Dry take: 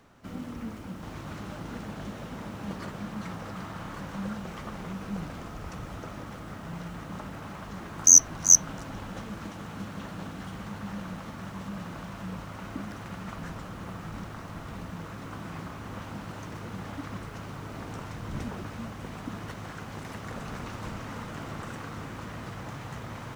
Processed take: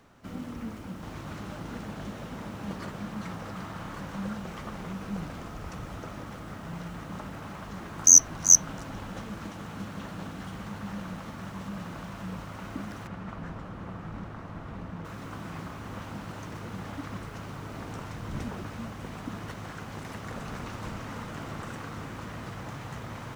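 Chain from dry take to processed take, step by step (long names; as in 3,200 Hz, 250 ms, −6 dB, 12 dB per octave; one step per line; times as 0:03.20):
0:13.07–0:15.05: low-pass filter 1,800 Hz 6 dB per octave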